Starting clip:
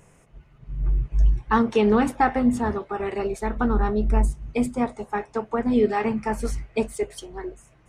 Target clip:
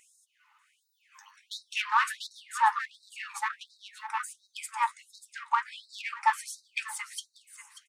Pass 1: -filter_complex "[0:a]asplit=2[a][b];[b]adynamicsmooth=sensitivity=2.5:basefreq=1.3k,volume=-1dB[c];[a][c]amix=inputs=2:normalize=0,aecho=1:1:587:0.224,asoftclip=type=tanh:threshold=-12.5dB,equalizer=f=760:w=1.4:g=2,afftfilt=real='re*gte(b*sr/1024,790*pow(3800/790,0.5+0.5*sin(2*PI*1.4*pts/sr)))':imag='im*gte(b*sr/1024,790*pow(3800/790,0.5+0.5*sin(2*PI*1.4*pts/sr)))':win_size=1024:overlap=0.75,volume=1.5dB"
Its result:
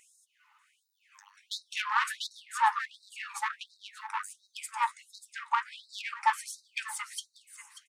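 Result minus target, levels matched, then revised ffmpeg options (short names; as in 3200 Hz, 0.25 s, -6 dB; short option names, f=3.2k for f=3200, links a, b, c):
soft clip: distortion +11 dB
-filter_complex "[0:a]asplit=2[a][b];[b]adynamicsmooth=sensitivity=2.5:basefreq=1.3k,volume=-1dB[c];[a][c]amix=inputs=2:normalize=0,aecho=1:1:587:0.224,asoftclip=type=tanh:threshold=-4.5dB,equalizer=f=760:w=1.4:g=2,afftfilt=real='re*gte(b*sr/1024,790*pow(3800/790,0.5+0.5*sin(2*PI*1.4*pts/sr)))':imag='im*gte(b*sr/1024,790*pow(3800/790,0.5+0.5*sin(2*PI*1.4*pts/sr)))':win_size=1024:overlap=0.75,volume=1.5dB"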